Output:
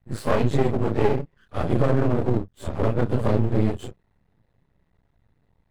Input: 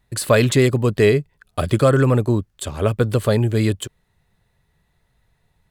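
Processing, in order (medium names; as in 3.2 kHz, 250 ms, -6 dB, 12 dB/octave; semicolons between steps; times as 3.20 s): phase randomisation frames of 100 ms; high-pass 330 Hz 6 dB/octave; tilt EQ -4.5 dB/octave; compression 2.5:1, threshold -15 dBFS, peak gain reduction 7.5 dB; half-wave rectifier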